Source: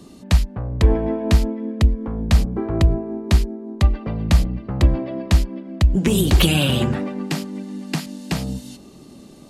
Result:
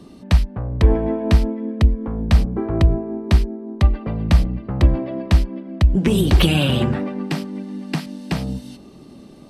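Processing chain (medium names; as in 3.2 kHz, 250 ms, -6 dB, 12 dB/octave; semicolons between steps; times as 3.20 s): treble shelf 5.3 kHz -9 dB; band-stop 6.9 kHz, Q 7.7; trim +1 dB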